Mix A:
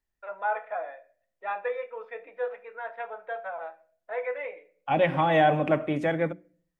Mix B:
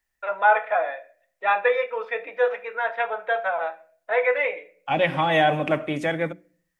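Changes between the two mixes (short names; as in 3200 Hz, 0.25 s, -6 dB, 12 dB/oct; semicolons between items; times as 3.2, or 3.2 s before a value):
first voice +9.0 dB; master: add high shelf 2300 Hz +11.5 dB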